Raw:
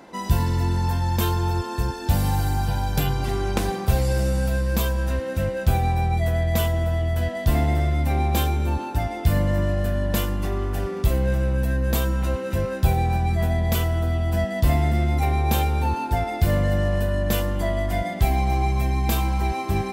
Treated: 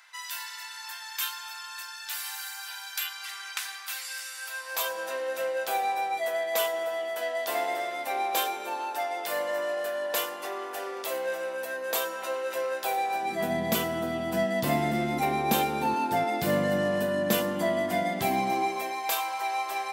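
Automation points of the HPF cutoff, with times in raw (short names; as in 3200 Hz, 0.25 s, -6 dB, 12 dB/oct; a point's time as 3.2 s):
HPF 24 dB/oct
4.37 s 1400 Hz
4.98 s 480 Hz
13.1 s 480 Hz
13.53 s 180 Hz
18.37 s 180 Hz
19.13 s 600 Hz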